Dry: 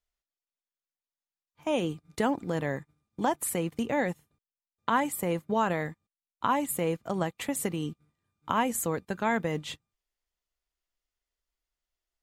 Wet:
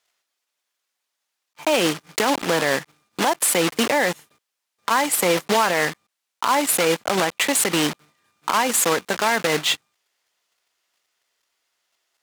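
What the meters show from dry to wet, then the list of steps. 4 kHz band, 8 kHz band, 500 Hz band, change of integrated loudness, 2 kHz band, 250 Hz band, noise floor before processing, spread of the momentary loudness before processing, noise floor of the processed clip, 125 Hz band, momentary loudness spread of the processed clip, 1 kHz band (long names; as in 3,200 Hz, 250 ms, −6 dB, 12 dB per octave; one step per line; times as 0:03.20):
+18.5 dB, +14.5 dB, +9.0 dB, +10.0 dB, +13.0 dB, +5.0 dB, below −85 dBFS, 11 LU, −81 dBFS, +1.5 dB, 8 LU, +8.5 dB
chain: one scale factor per block 3 bits
meter weighting curve A
downward compressor, threshold −30 dBFS, peak gain reduction 9.5 dB
boost into a limiter +25.5 dB
level −7.5 dB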